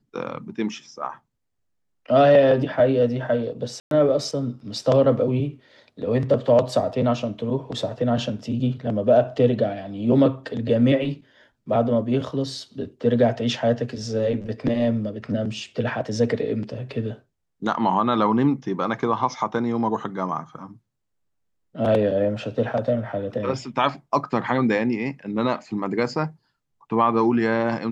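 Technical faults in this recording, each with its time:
3.8–3.91 gap 0.112 s

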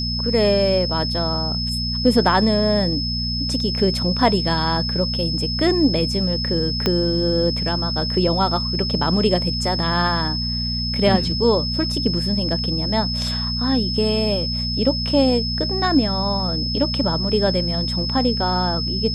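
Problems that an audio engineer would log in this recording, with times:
hum 60 Hz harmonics 4 -26 dBFS
tone 5200 Hz -24 dBFS
6.86 pop -5 dBFS

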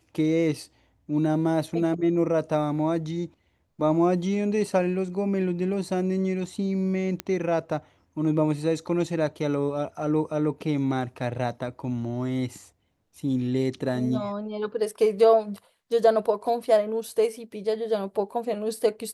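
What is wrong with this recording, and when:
7.2 pop -13 dBFS

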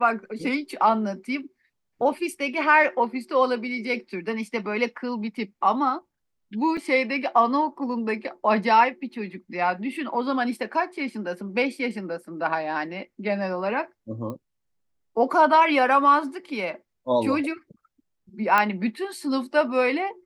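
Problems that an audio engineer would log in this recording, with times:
6.77 gap 4.1 ms
14.3 pop -23 dBFS
18.58 pop -8 dBFS

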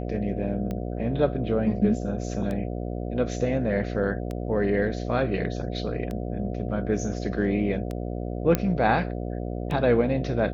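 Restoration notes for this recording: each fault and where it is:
buzz 60 Hz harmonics 12 -31 dBFS
tick 33 1/3 rpm -20 dBFS
8.55 pop -8 dBFS

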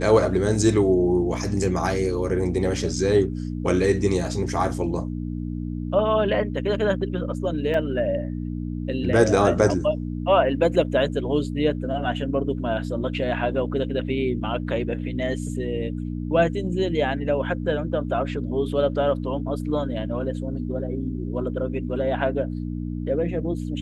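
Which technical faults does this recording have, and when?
hum 60 Hz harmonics 5 -29 dBFS
7.74 gap 2.4 ms

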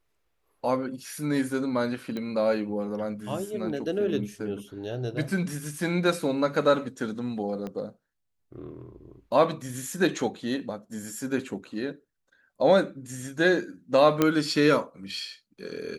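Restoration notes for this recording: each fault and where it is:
2.17 pop -21 dBFS
7.67 pop -23 dBFS
14.22 pop -8 dBFS

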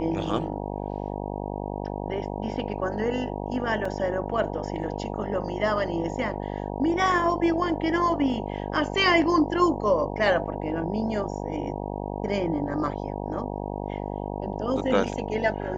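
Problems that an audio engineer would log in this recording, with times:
buzz 50 Hz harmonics 19 -32 dBFS
3.85 gap 3.9 ms

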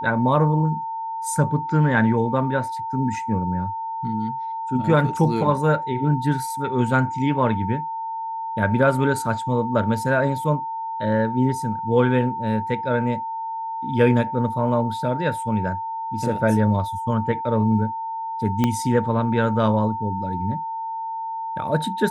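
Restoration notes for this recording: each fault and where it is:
tone 900 Hz -26 dBFS
18.64 pop -7 dBFS

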